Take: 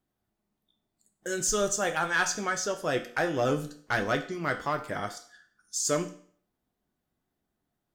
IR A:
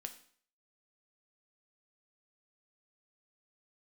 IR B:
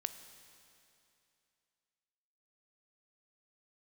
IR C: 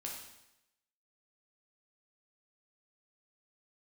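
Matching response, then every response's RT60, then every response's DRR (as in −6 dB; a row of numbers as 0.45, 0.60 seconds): A; 0.55, 2.7, 0.90 seconds; 6.0, 9.5, −2.0 decibels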